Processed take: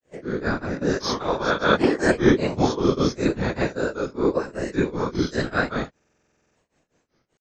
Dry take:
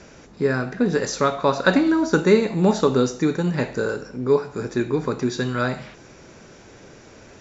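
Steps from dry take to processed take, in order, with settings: reverse spectral sustain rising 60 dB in 0.69 s; whisper effect; gate -34 dBFS, range -22 dB; granulator 233 ms, grains 5.1 per s, pitch spread up and down by 3 st; buffer glitch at 5.95 s, samples 2048, times 12

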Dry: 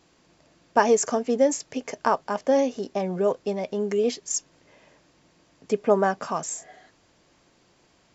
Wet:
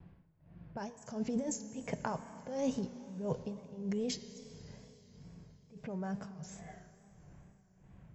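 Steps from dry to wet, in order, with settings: level-controlled noise filter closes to 2.6 kHz, open at -17.5 dBFS; band-stop 1.2 kHz, Q 12; level-controlled noise filter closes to 2.3 kHz, open at -19 dBFS; FFT filter 170 Hz 0 dB, 280 Hz -18 dB, 2.9 kHz -19 dB, 7.2 kHz -13 dB; compressor with a negative ratio -43 dBFS, ratio -1; tremolo 1.5 Hz, depth 96%; Schroeder reverb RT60 3.9 s, combs from 28 ms, DRR 11.5 dB; vibrato 2.3 Hz 70 cents; trim +9.5 dB

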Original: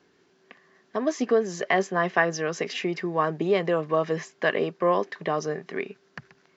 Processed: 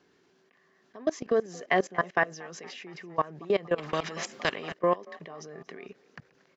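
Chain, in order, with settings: level held to a coarse grid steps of 22 dB; frequency-shifting echo 232 ms, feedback 60%, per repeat +45 Hz, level -23 dB; 3.78–4.74 s: spectrum-flattening compressor 2:1

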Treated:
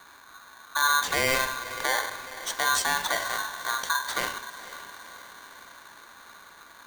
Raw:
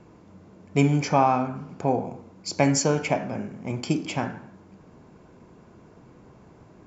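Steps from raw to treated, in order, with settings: peak limiter -15.5 dBFS, peak gain reduction 9 dB; echo that smears into a reverb 505 ms, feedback 59%, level -14 dB; polarity switched at an audio rate 1.3 kHz

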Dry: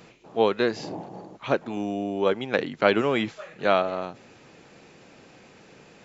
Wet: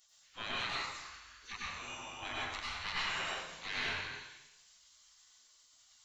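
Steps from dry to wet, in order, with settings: single-diode clipper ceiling -5.5 dBFS; spectral gate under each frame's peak -25 dB weak; 2.36–3.04 s: peaking EQ 430 Hz -7.5 dB 1.4 oct; plate-style reverb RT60 0.96 s, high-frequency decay 0.9×, pre-delay 80 ms, DRR -6 dB; dynamic bell 3.3 kHz, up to -6 dB, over -51 dBFS, Q 1.9

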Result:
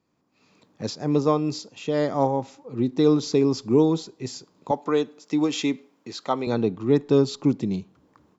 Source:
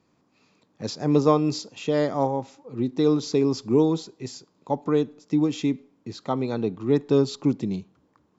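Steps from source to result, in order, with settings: 4.71–6.47 s: high-pass 660 Hz 6 dB/octave; level rider gain up to 15.5 dB; trim -7 dB

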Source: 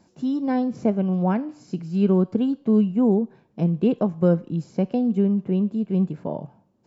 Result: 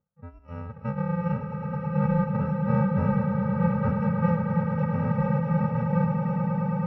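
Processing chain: bit-reversed sample order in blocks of 128 samples; low-pass 1.5 kHz 24 dB/octave; on a send: echo with a slow build-up 108 ms, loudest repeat 8, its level -9.5 dB; on the sum: spectral noise reduction 18 dB

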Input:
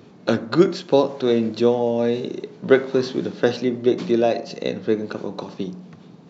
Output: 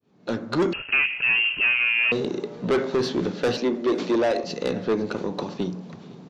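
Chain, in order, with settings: fade-in on the opening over 0.81 s; 3.57–4.44 s: high-pass 230 Hz 24 dB/octave; saturation -19.5 dBFS, distortion -7 dB; delay 511 ms -20.5 dB; 0.73–2.12 s: frequency inversion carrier 3 kHz; trim +2.5 dB

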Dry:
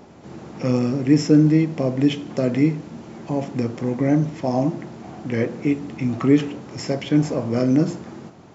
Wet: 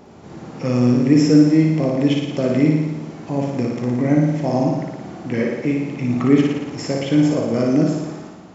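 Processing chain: flutter echo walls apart 9.8 m, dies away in 1.1 s

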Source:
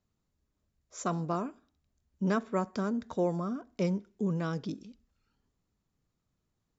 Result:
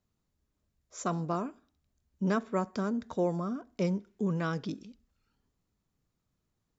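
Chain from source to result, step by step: 4.07–4.85 s: peaking EQ 1.8 kHz +5 dB 2 oct

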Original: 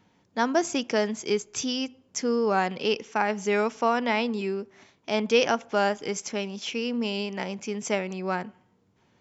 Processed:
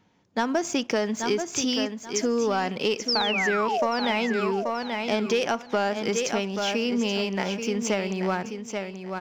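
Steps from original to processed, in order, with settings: resampled via 16 kHz; waveshaping leveller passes 1; painted sound fall, 3.08–3.87 s, 530–5700 Hz -23 dBFS; feedback delay 832 ms, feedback 24%, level -9 dB; compression, threshold -22 dBFS, peak gain reduction 8.5 dB; trim +1 dB

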